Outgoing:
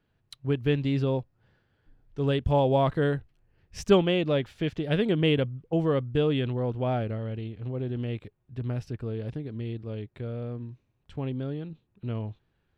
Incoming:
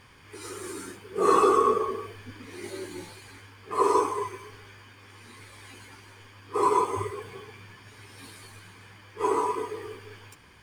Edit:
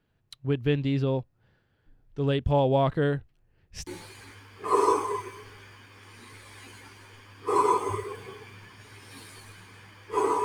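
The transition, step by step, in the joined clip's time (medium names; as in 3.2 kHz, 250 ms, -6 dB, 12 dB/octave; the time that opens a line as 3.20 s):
outgoing
3.87 s: go over to incoming from 2.94 s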